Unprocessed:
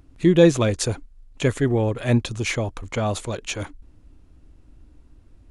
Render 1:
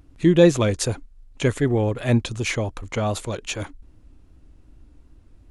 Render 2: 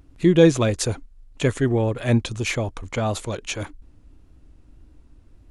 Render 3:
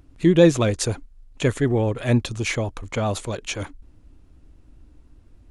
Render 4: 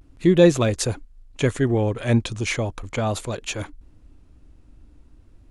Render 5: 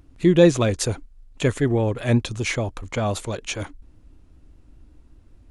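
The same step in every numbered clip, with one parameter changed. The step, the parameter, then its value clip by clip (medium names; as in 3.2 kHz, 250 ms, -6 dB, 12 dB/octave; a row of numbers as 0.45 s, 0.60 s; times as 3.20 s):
vibrato, rate: 2.6 Hz, 1.7 Hz, 9.9 Hz, 0.38 Hz, 5.1 Hz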